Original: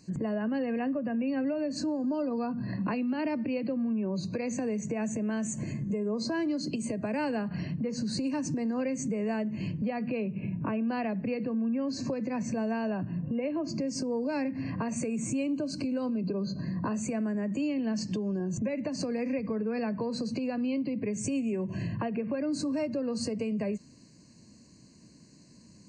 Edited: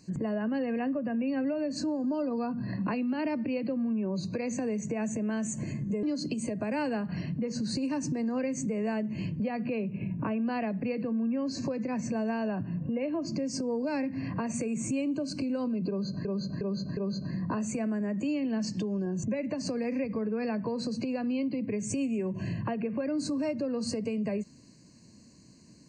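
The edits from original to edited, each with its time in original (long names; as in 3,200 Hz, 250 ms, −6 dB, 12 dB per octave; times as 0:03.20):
0:06.03–0:06.45: remove
0:16.31–0:16.67: repeat, 4 plays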